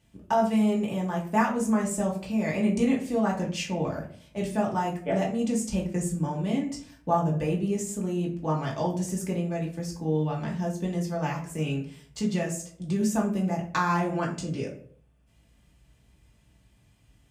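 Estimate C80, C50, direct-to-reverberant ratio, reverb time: 13.0 dB, 8.5 dB, −3.5 dB, 0.55 s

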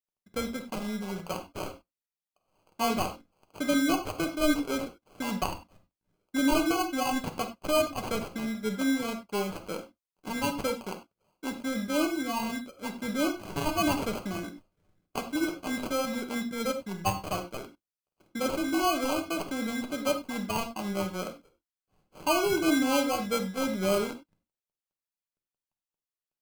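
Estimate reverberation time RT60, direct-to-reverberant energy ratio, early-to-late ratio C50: non-exponential decay, 5.0 dB, 10.5 dB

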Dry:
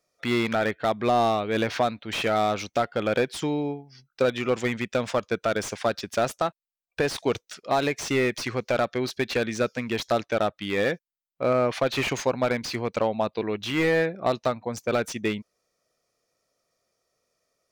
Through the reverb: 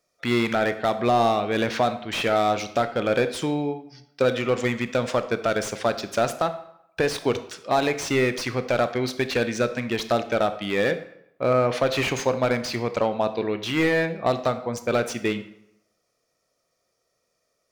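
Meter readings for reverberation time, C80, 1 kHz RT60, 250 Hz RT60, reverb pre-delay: 0.80 s, 15.0 dB, 0.80 s, 0.75 s, 19 ms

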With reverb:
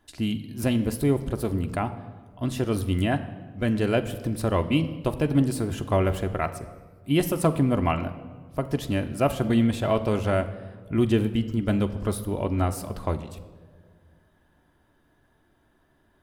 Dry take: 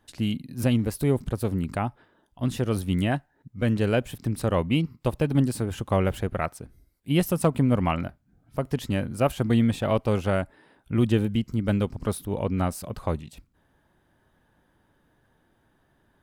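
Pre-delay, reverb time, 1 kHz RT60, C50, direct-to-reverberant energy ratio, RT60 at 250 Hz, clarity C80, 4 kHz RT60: 3 ms, 1.7 s, 1.4 s, 13.5 dB, 7.0 dB, 2.1 s, 15.0 dB, 1.0 s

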